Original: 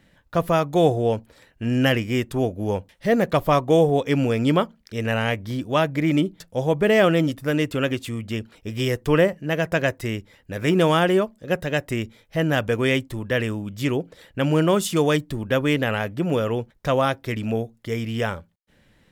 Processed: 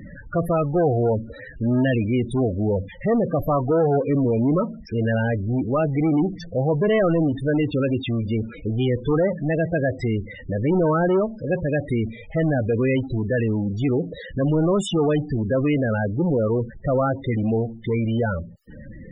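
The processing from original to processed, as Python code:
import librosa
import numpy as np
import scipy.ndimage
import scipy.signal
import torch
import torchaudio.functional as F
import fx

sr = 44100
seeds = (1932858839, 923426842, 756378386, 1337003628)

y = 10.0 ** (-14.5 / 20.0) * np.tanh(x / 10.0 ** (-14.5 / 20.0))
y = fx.power_curve(y, sr, exponent=0.5)
y = fx.spec_topn(y, sr, count=16)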